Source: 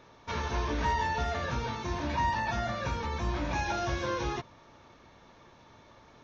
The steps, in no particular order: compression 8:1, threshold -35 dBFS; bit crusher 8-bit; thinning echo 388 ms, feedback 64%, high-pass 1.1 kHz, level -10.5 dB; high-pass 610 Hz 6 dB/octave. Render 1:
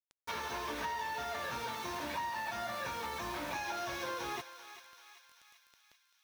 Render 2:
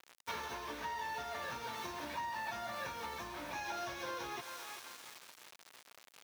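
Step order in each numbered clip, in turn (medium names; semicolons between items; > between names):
high-pass > bit crusher > compression > thinning echo; thinning echo > bit crusher > compression > high-pass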